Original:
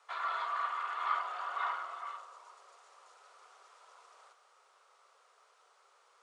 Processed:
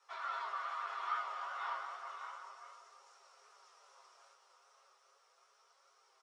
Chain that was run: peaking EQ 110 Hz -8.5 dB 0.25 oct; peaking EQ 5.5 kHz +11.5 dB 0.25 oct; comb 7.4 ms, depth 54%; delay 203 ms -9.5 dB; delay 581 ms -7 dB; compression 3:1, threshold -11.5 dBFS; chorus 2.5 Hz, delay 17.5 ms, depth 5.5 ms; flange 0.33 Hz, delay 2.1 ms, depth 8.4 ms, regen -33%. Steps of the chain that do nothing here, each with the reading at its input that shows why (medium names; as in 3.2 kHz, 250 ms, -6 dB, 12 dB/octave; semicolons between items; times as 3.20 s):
peaking EQ 110 Hz: input has nothing below 360 Hz; compression, threshold -11.5 dBFS: peak at its input -20.5 dBFS